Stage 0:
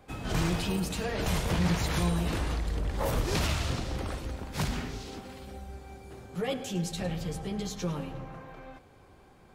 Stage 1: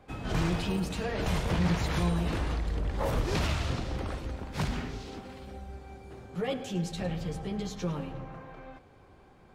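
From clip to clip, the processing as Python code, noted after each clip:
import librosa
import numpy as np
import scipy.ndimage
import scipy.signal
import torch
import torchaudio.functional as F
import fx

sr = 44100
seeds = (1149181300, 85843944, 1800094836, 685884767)

y = fx.lowpass(x, sr, hz=4000.0, slope=6)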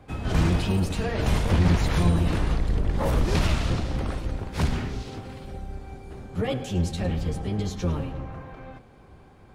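y = fx.octave_divider(x, sr, octaves=1, level_db=2.0)
y = fx.peak_eq(y, sr, hz=9700.0, db=3.5, octaves=0.3)
y = F.gain(torch.from_numpy(y), 3.5).numpy()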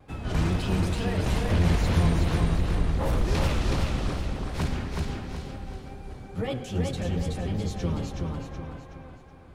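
y = fx.wow_flutter(x, sr, seeds[0], rate_hz=2.1, depth_cents=45.0)
y = fx.echo_feedback(y, sr, ms=373, feedback_pct=40, wet_db=-3.0)
y = F.gain(torch.from_numpy(y), -3.5).numpy()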